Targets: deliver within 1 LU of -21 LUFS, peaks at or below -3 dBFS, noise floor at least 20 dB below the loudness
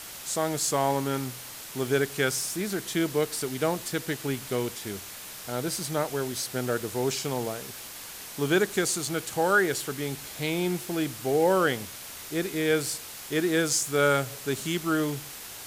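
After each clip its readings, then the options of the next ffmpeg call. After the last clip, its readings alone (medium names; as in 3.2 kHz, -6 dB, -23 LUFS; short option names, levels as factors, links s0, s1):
noise floor -42 dBFS; noise floor target -48 dBFS; loudness -28.0 LUFS; peak level -11.0 dBFS; loudness target -21.0 LUFS
-> -af "afftdn=nr=6:nf=-42"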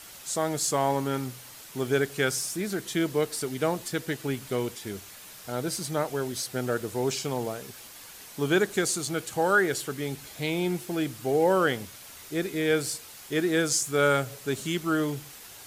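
noise floor -46 dBFS; noise floor target -48 dBFS
-> -af "afftdn=nr=6:nf=-46"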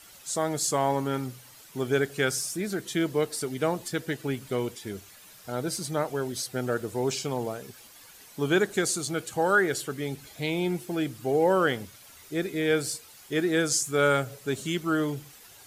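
noise floor -51 dBFS; loudness -28.0 LUFS; peak level -11.5 dBFS; loudness target -21.0 LUFS
-> -af "volume=2.24"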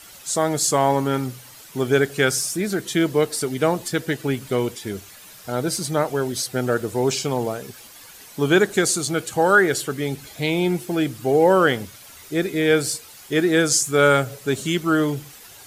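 loudness -21.0 LUFS; peak level -4.5 dBFS; noise floor -44 dBFS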